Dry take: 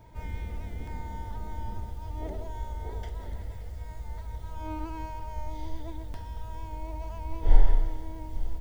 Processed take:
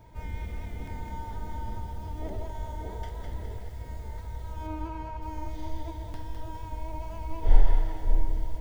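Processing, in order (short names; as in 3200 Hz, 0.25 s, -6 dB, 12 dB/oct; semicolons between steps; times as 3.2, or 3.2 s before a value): 4.66–5.21 LPF 2800 Hz -> 1900 Hz 6 dB/oct; on a send: split-band echo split 610 Hz, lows 0.583 s, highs 0.207 s, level -5.5 dB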